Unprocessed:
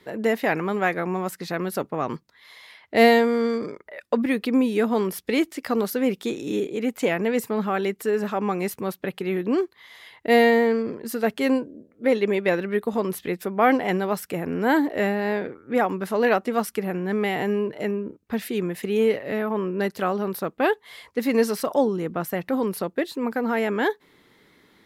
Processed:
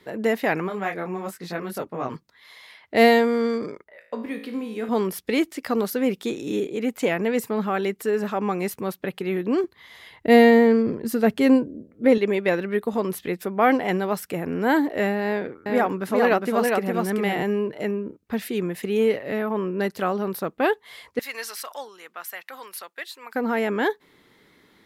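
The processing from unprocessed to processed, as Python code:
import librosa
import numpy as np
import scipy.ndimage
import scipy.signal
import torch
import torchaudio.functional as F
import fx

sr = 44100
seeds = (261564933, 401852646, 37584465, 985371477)

y = fx.detune_double(x, sr, cents=20, at=(0.67, 2.14), fade=0.02)
y = fx.comb_fb(y, sr, f0_hz=55.0, decay_s=0.66, harmonics='all', damping=0.0, mix_pct=80, at=(3.84, 4.89))
y = fx.low_shelf(y, sr, hz=270.0, db=11.0, at=(9.64, 12.18))
y = fx.echo_single(y, sr, ms=408, db=-3.0, at=(15.25, 17.43))
y = fx.highpass(y, sr, hz=1400.0, slope=12, at=(21.19, 23.35))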